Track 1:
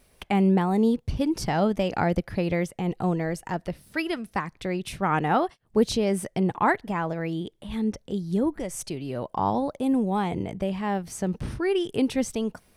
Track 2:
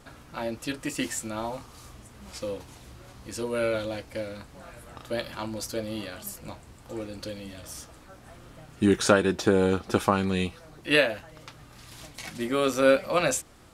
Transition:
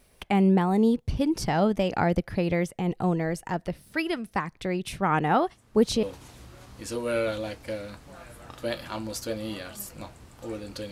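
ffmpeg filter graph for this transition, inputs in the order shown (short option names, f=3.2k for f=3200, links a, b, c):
-filter_complex "[1:a]asplit=2[a][b];[0:a]apad=whole_dur=10.91,atrim=end=10.91,atrim=end=6.032[c];[b]atrim=start=2.498:end=7.38[d];[a]atrim=start=1.94:end=2.5,asetpts=PTS-STARTPTS,volume=-12dB,afade=t=in:d=0.004:c=hsin,afade=t=out:st=0.556:d=0.004:c=hsin,adelay=5470[e];[c][d]acrossfade=d=0.004:c1=hsin:c2=hsin[f];[f][e]amix=inputs=2:normalize=0"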